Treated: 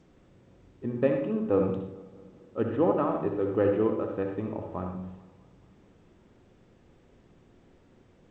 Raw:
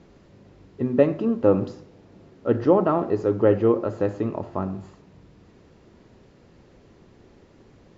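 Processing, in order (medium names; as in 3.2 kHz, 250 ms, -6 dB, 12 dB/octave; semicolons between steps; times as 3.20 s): dynamic bell 2.3 kHz, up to +4 dB, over -37 dBFS, Q 0.74; bucket-brigade echo 207 ms, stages 2048, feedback 60%, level -21 dB; reverberation RT60 0.60 s, pre-delay 61 ms, DRR 3.5 dB; speed mistake 25 fps video run at 24 fps; resampled via 8 kHz; trim -8 dB; G.722 64 kbps 16 kHz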